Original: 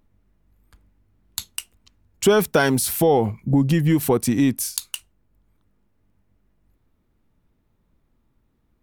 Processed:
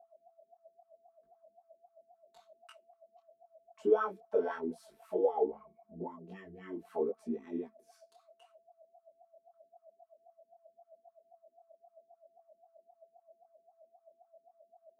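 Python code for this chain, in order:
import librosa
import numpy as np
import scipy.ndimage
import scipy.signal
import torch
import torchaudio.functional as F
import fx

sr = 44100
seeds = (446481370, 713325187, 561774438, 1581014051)

y = fx.low_shelf(x, sr, hz=73.0, db=-7.0)
y = fx.stretch_grains(y, sr, factor=1.7, grain_ms=22.0)
y = y + 10.0 ** (-46.0 / 20.0) * np.sin(2.0 * np.pi * 670.0 * np.arange(len(y)) / sr)
y = fx.wah_lfo(y, sr, hz=3.8, low_hz=320.0, high_hz=1300.0, q=8.4)
y = fx.detune_double(y, sr, cents=28)
y = F.gain(torch.from_numpy(y), 1.0).numpy()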